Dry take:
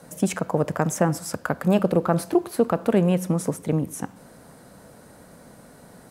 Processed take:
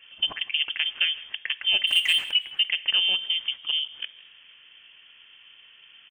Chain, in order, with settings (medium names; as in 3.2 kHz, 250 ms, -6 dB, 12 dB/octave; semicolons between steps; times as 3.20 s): frequency inversion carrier 3.3 kHz; 1.87–2.31 s: power-law waveshaper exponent 0.7; frequency-shifting echo 162 ms, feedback 42%, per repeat +56 Hz, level -20.5 dB; trim -4 dB